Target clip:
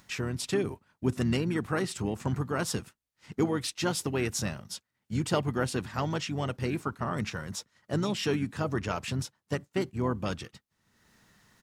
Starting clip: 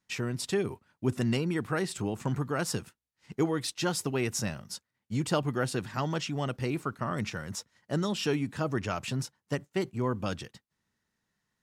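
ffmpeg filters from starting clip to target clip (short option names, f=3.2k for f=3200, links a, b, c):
-filter_complex "[0:a]asplit=3[a][b][c];[b]asetrate=29433,aresample=44100,atempo=1.49831,volume=-12dB[d];[c]asetrate=33038,aresample=44100,atempo=1.33484,volume=-15dB[e];[a][d][e]amix=inputs=3:normalize=0,acompressor=mode=upward:threshold=-46dB:ratio=2.5"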